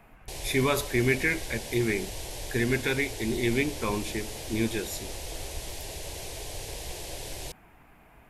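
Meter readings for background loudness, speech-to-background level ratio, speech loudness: -38.0 LUFS, 9.0 dB, -29.0 LUFS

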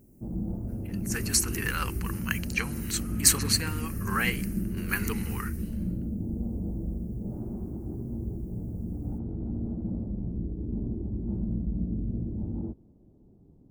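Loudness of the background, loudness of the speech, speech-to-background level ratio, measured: -34.0 LUFS, -28.5 LUFS, 5.5 dB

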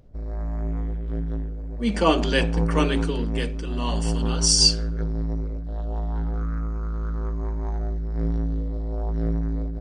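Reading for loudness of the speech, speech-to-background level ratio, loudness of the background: -23.0 LUFS, 5.5 dB, -28.5 LUFS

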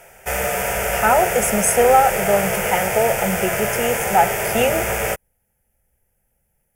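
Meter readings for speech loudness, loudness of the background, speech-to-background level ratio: -19.0 LUFS, -21.5 LUFS, 2.5 dB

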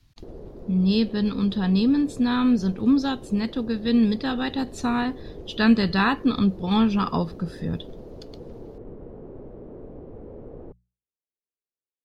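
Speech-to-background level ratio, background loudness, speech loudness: 19.0 dB, -42.0 LUFS, -23.0 LUFS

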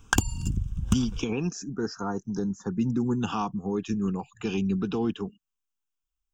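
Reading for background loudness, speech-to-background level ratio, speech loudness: -29.5 LUFS, -0.5 dB, -30.0 LUFS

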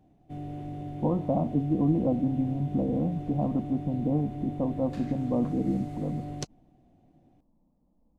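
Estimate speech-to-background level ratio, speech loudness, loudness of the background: 9.5 dB, -29.0 LUFS, -38.5 LUFS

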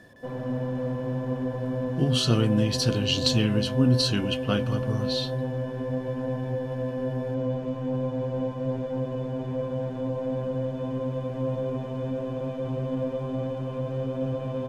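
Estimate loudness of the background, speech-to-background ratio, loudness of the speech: -30.5 LUFS, 5.0 dB, -25.5 LUFS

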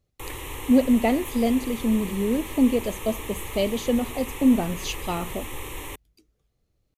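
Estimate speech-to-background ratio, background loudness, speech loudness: 12.0 dB, -36.0 LUFS, -24.0 LUFS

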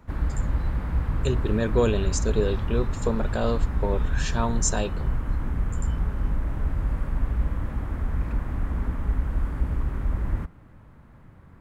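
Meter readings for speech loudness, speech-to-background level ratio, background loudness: -28.0 LUFS, 1.0 dB, -29.0 LUFS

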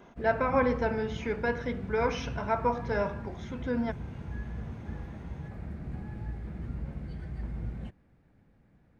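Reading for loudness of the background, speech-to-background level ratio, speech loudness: -40.0 LUFS, 9.0 dB, -31.0 LUFS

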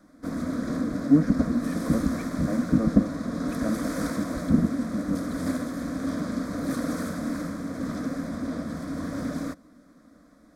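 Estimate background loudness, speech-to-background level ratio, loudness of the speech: -31.0 LUFS, 4.0 dB, -27.0 LUFS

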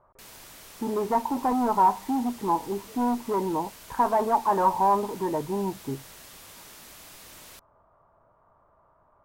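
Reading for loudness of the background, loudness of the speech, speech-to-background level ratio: -45.5 LUFS, -26.0 LUFS, 19.5 dB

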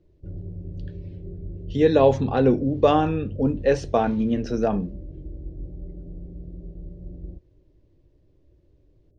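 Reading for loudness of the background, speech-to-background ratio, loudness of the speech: -38.0 LUFS, 16.5 dB, -21.5 LUFS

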